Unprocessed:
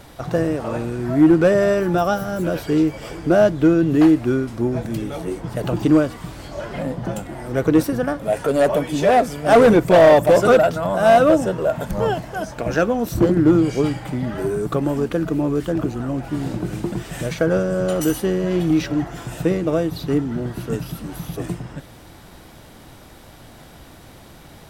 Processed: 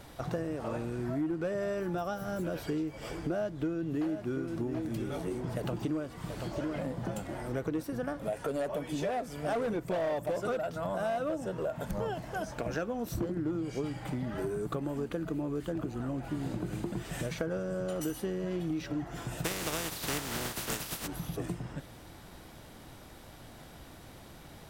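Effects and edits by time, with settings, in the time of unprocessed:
3.22–7.42 s: delay 731 ms -10.5 dB
14.54–17.05 s: band-stop 5.5 kHz
19.44–21.06 s: spectral contrast reduction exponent 0.35
whole clip: compression 6:1, threshold -24 dBFS; trim -7 dB

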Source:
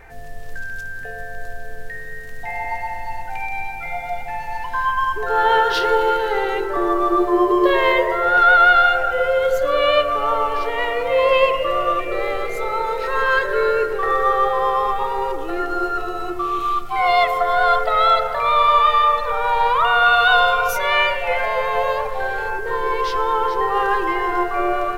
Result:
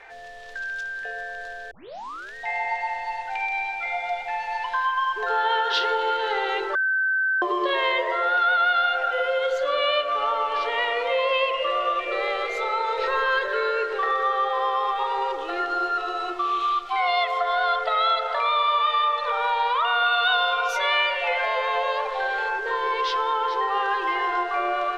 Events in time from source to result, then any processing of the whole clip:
1.71 s: tape start 0.64 s
6.75–7.42 s: bleep 1.54 kHz -18 dBFS
12.98–13.48 s: bass shelf 390 Hz +10 dB
whole clip: three-band isolator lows -22 dB, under 410 Hz, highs -22 dB, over 7.2 kHz; compression 3:1, threshold -22 dBFS; peaking EQ 3.5 kHz +6.5 dB 0.76 oct

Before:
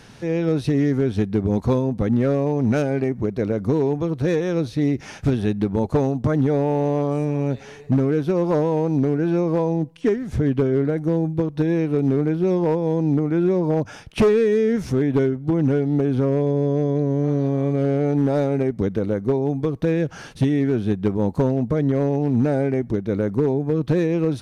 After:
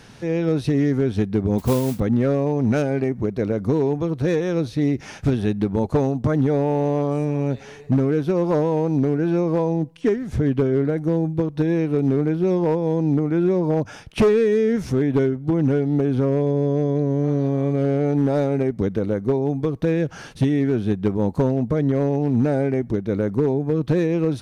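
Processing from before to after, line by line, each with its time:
1.58–2.00 s: modulation noise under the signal 17 dB

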